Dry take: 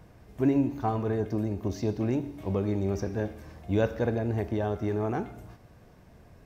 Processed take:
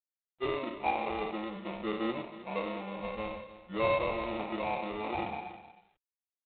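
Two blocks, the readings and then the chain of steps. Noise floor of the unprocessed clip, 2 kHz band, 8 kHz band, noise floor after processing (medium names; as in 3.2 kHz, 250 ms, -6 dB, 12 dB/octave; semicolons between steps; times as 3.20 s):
-55 dBFS, +3.5 dB, no reading, under -85 dBFS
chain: spectral sustain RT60 1.41 s; dynamic bell 960 Hz, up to +7 dB, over -49 dBFS, Q 3.8; high-pass 340 Hz 12 dB/octave; spectral noise reduction 21 dB; treble shelf 3.1 kHz -7.5 dB; comb 5.4 ms, depth 87%; in parallel at -1 dB: peak limiter -21.5 dBFS, peak gain reduction 10 dB; on the sum: flange 0.41 Hz, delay 7.7 ms, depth 3.8 ms, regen +71%; sample-rate reducer 1.6 kHz, jitter 0%; on a send: delay 314 ms -15.5 dB; on the sum: trim -6 dB; G.726 24 kbps 8 kHz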